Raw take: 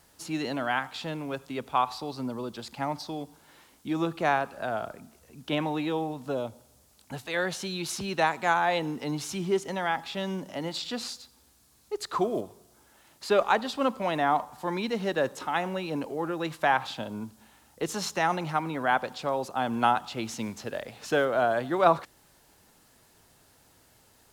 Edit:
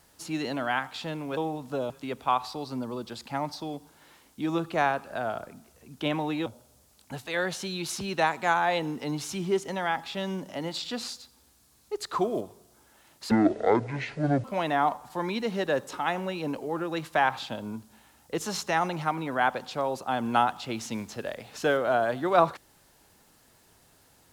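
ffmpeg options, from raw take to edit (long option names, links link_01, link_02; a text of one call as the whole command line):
ffmpeg -i in.wav -filter_complex "[0:a]asplit=6[link_01][link_02][link_03][link_04][link_05][link_06];[link_01]atrim=end=1.372[link_07];[link_02]atrim=start=5.928:end=6.462[link_08];[link_03]atrim=start=1.368:end=5.932[link_09];[link_04]atrim=start=6.458:end=13.314[link_10];[link_05]atrim=start=13.31:end=13.92,asetpts=PTS-STARTPTS,asetrate=23814,aresample=44100[link_11];[link_06]atrim=start=13.916[link_12];[link_07][link_08]acrossfade=duration=0.004:curve1=hsin:curve2=hsin[link_13];[link_13][link_09]acrossfade=duration=0.004:curve1=hsin:curve2=hsin[link_14];[link_14][link_10]acrossfade=duration=0.004:curve1=hsin:curve2=hsin[link_15];[link_15][link_11]acrossfade=duration=0.004:curve1=hsin:curve2=hsin[link_16];[link_16][link_12]acrossfade=duration=0.004:curve1=hsin:curve2=hsin" out.wav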